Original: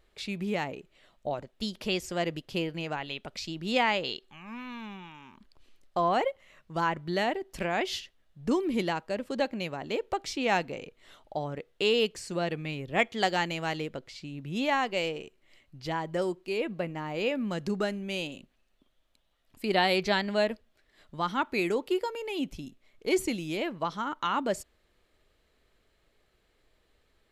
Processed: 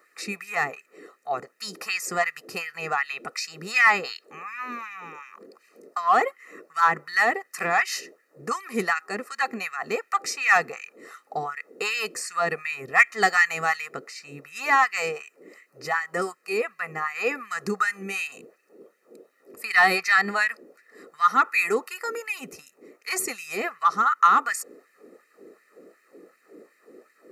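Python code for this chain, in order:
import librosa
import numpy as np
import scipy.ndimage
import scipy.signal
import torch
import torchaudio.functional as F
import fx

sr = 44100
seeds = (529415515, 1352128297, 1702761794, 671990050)

p1 = fx.fixed_phaser(x, sr, hz=1400.0, stages=4)
p2 = p1 + 0.89 * np.pad(p1, (int(1.6 * sr / 1000.0), 0))[:len(p1)]
p3 = fx.dmg_noise_band(p2, sr, seeds[0], low_hz=170.0, high_hz=490.0, level_db=-60.0)
p4 = fx.filter_lfo_highpass(p3, sr, shape='sine', hz=2.7, low_hz=330.0, high_hz=2000.0, q=1.7)
p5 = np.clip(p4, -10.0 ** (-27.5 / 20.0), 10.0 ** (-27.5 / 20.0))
p6 = p4 + (p5 * librosa.db_to_amplitude(-9.5))
y = p6 * librosa.db_to_amplitude(7.5)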